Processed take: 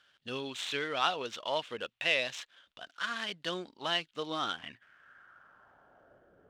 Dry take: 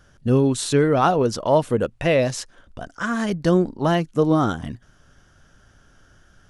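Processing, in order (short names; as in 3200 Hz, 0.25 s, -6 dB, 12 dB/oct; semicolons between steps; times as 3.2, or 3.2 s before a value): median filter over 9 samples; band-pass sweep 3400 Hz -> 470 Hz, 4.41–6.36; gain +6 dB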